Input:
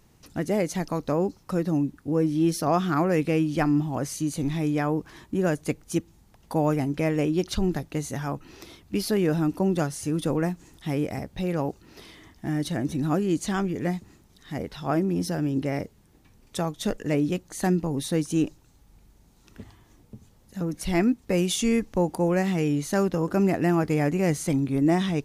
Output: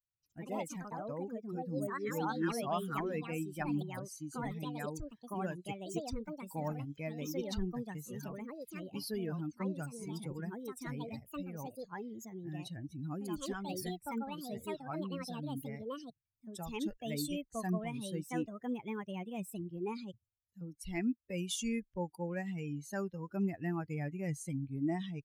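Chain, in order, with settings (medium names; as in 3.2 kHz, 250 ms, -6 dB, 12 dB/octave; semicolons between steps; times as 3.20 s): expander on every frequency bin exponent 2; ever faster or slower copies 113 ms, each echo +4 st, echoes 2; dynamic bell 440 Hz, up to -5 dB, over -39 dBFS, Q 1.2; trim -7.5 dB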